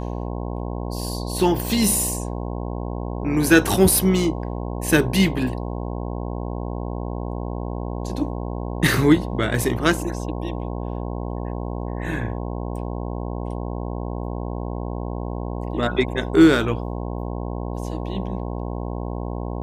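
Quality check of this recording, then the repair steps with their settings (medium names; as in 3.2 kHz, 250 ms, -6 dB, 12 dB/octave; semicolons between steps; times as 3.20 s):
buzz 60 Hz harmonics 18 -28 dBFS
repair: de-hum 60 Hz, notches 18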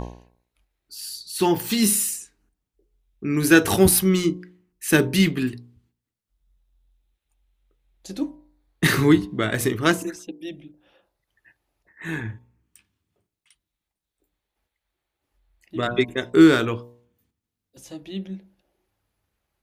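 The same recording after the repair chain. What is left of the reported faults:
nothing left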